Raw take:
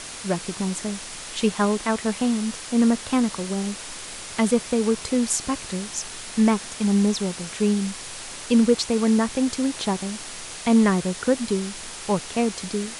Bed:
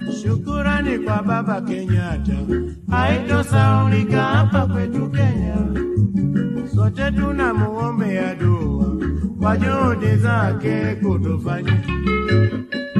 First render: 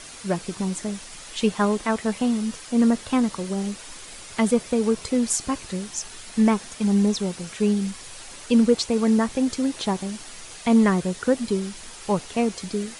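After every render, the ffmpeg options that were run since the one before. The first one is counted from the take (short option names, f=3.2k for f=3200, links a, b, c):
-af "afftdn=nr=7:nf=-37"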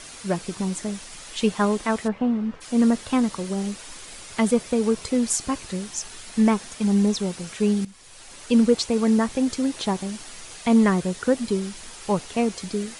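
-filter_complex "[0:a]asplit=3[a][b][c];[a]afade=t=out:st=2.07:d=0.02[d];[b]lowpass=1.7k,afade=t=in:st=2.07:d=0.02,afade=t=out:st=2.6:d=0.02[e];[c]afade=t=in:st=2.6:d=0.02[f];[d][e][f]amix=inputs=3:normalize=0,asplit=2[g][h];[g]atrim=end=7.85,asetpts=PTS-STARTPTS,afade=t=out:st=7.846:d=0.004:c=hsin:silence=0.149624[i];[h]atrim=start=7.85,asetpts=PTS-STARTPTS,afade=t=in:d=0.71:silence=0.149624[j];[i][j]concat=n=2:v=0:a=1"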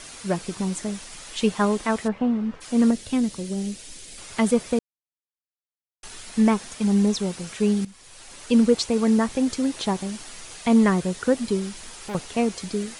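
-filter_complex "[0:a]asettb=1/sr,asplit=3[a][b][c];[a]atrim=end=2.914[d];[b]atrim=start=2.91:end=4.18,asetpts=PTS-STARTPTS,afade=t=in:d=0.004:c=qsin,afade=t=out:st=1.266:d=0.004:c=qsin,equalizer=f=1.1k:t=o:w=1.5:g=-13[e];[c]atrim=start=4.176[f];[d][e]acrossfade=d=0.004:c1=hsin:c2=qsin[g];[g][f]acrossfade=d=0.004:c1=qsin:c2=hsin,asettb=1/sr,asplit=3[h][i][j];[h]atrim=end=11.734[k];[i]atrim=start=11.73:end=12.15,asetpts=PTS-STARTPTS,afade=t=in:d=0.004:c=qsin,afade=t=out:st=0.416:d=0.004:c=qsin,asoftclip=type=hard:threshold=-30dB[l];[j]atrim=start=12.146[m];[k][l]acrossfade=d=0.004:c1=hsin:c2=qsin[n];[n][m]acrossfade=d=0.004:c1=qsin:c2=hsin,asplit=3[o][p][q];[o]atrim=end=4.79,asetpts=PTS-STARTPTS,afade=t=out:st=4.786:d=0.004:c=hsin[r];[p]atrim=start=4.79:end=6.03,asetpts=PTS-STARTPTS,volume=0[s];[q]atrim=start=6.03,asetpts=PTS-STARTPTS,afade=t=in:d=0.004:c=hsin[t];[r][s][t]concat=n=3:v=0:a=1"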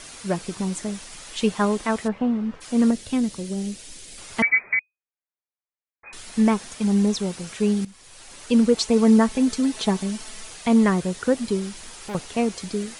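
-filter_complex "[0:a]asettb=1/sr,asplit=3[a][b][c];[a]atrim=end=4.424[d];[b]atrim=start=4.42:end=6.13,asetpts=PTS-STARTPTS,afade=t=in:d=0.004:c=qsin,afade=t=out:st=1.706:d=0.004:c=qsin,lowpass=f=2.1k:t=q:w=0.5098,lowpass=f=2.1k:t=q:w=0.6013,lowpass=f=2.1k:t=q:w=0.9,lowpass=f=2.1k:t=q:w=2.563,afreqshift=-2500[e];[c]atrim=start=6.126[f];[d][e]acrossfade=d=0.004:c1=hsin:c2=qsin[g];[g][f]acrossfade=d=0.004:c1=qsin:c2=hsin,asettb=1/sr,asplit=3[h][i][j];[h]atrim=end=8.774[k];[i]atrim=start=8.77:end=10.5,asetpts=PTS-STARTPTS,afade=t=in:d=0.004:c=qsin,afade=t=out:st=1.726:d=0.004:c=qsin,aecho=1:1:4.6:0.64,atrim=end_sample=76293[l];[j]atrim=start=10.496[m];[k][l]acrossfade=d=0.004:c1=hsin:c2=qsin[n];[n][m]acrossfade=d=0.004:c1=qsin:c2=hsin"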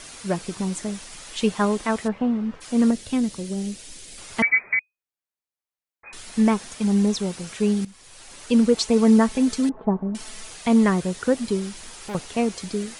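-filter_complex "[0:a]asettb=1/sr,asplit=3[a][b][c];[a]atrim=end=9.694[d];[b]atrim=start=9.69:end=10.15,asetpts=PTS-STARTPTS,afade=t=in:d=0.004:c=qsin,afade=t=out:st=0.456:d=0.004:c=qsin,lowpass=f=1.1k:w=0.5412,lowpass=f=1.1k:w=1.3066[e];[c]atrim=start=10.146[f];[d][e]acrossfade=d=0.004:c1=hsin:c2=qsin[g];[g][f]acrossfade=d=0.004:c1=qsin:c2=hsin"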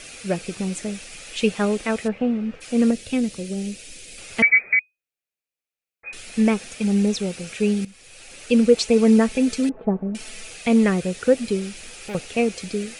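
-af "equalizer=f=500:t=o:w=0.33:g=6,equalizer=f=1k:t=o:w=0.33:g=-11,equalizer=f=2.5k:t=o:w=0.33:g=9"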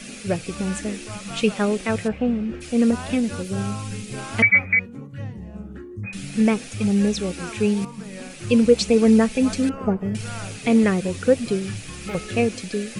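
-filter_complex "[1:a]volume=-16dB[a];[0:a][a]amix=inputs=2:normalize=0"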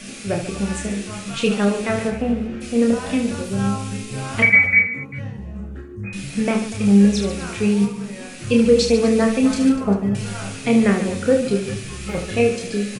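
-filter_complex "[0:a]asplit=2[a][b];[b]adelay=15,volume=-11dB[c];[a][c]amix=inputs=2:normalize=0,asplit=2[d][e];[e]aecho=0:1:30|75|142.5|243.8|395.6:0.631|0.398|0.251|0.158|0.1[f];[d][f]amix=inputs=2:normalize=0"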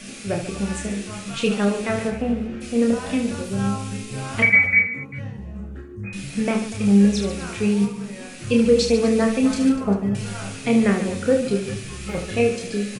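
-af "volume=-2dB"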